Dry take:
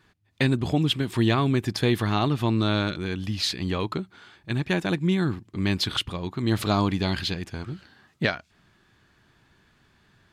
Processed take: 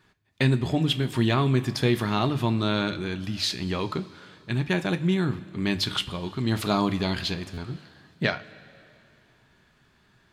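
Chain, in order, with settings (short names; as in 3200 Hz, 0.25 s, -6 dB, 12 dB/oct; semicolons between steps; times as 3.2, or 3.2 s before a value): notches 50/100/150 Hz; two-slope reverb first 0.24 s, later 2.7 s, from -18 dB, DRR 8.5 dB; stuck buffer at 7.53, samples 512, times 3; gain -1 dB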